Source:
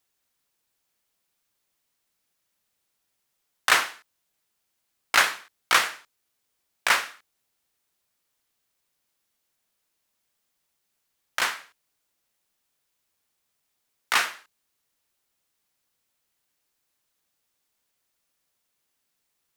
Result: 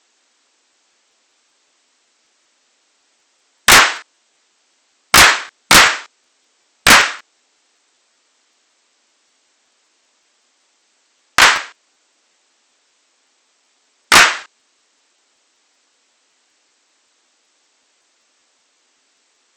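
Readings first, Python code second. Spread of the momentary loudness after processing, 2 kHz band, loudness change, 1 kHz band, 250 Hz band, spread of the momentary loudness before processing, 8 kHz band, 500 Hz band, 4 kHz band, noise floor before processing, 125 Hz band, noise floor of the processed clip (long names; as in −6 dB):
13 LU, +13.5 dB, +14.0 dB, +13.5 dB, +22.5 dB, 14 LU, +17.0 dB, +15.5 dB, +15.5 dB, −77 dBFS, can't be measured, −62 dBFS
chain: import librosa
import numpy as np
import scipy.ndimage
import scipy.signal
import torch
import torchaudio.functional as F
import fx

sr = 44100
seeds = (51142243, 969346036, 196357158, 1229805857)

y = fx.brickwall_bandpass(x, sr, low_hz=220.0, high_hz=8300.0)
y = fx.fold_sine(y, sr, drive_db=14, ceiling_db=-3.5)
y = fx.buffer_crackle(y, sr, first_s=0.72, period_s=0.19, block=512, kind='repeat')
y = y * 10.0 ** (2.0 / 20.0)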